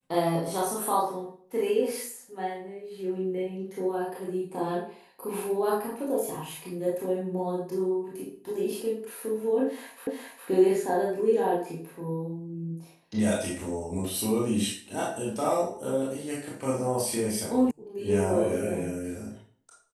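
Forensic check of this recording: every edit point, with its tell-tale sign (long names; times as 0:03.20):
0:10.07: the same again, the last 0.41 s
0:17.71: cut off before it has died away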